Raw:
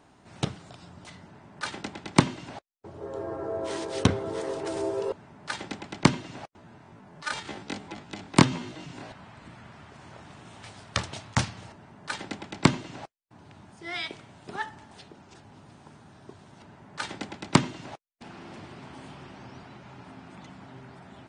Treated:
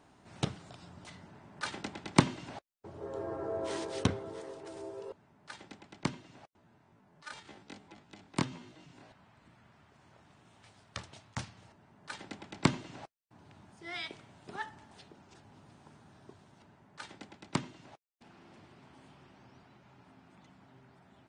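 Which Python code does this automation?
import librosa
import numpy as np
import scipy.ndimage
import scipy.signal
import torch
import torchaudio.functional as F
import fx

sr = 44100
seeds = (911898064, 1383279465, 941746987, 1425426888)

y = fx.gain(x, sr, db=fx.line((3.79, -4.0), (4.57, -14.0), (11.41, -14.0), (12.71, -6.5), (16.21, -6.5), (17.08, -13.0)))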